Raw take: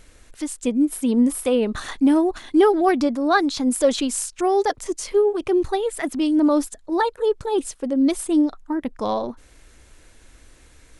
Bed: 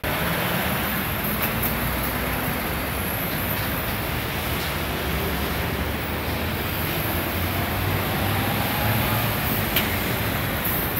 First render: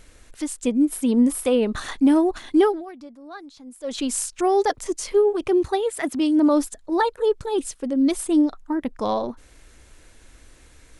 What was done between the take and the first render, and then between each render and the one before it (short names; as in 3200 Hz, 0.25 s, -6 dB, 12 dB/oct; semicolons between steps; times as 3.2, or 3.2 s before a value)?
2.56–4.11 dip -21 dB, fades 0.29 s; 5.52–6.54 HPF 46 Hz; 7.35–8.11 bell 720 Hz -3.5 dB 1.8 oct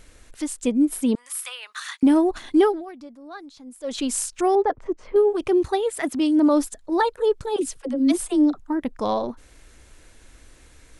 1.15–2.03 HPF 1200 Hz 24 dB/oct; 4.55–5.16 LPF 1400 Hz; 7.56–8.6 dispersion lows, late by 66 ms, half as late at 330 Hz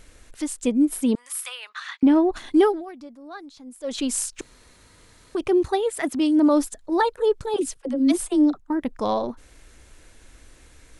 1.69–2.32 LPF 3800 Hz; 4.41–5.35 room tone; 7.54–8.74 gate -38 dBFS, range -8 dB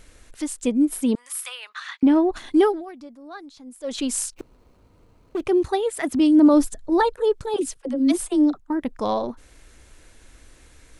4.34–5.45 median filter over 25 samples; 6.1–7.15 low shelf 230 Hz +10.5 dB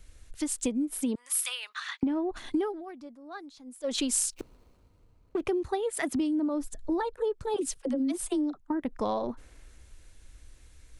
compressor 16:1, threshold -26 dBFS, peak gain reduction 17 dB; three-band expander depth 40%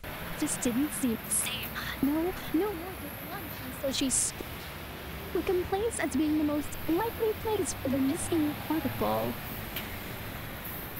add bed -15 dB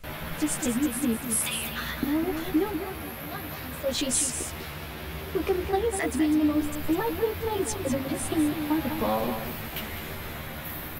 doubler 13 ms -2 dB; echo 0.2 s -8.5 dB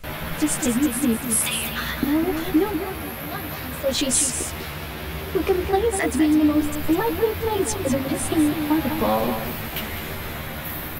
gain +5.5 dB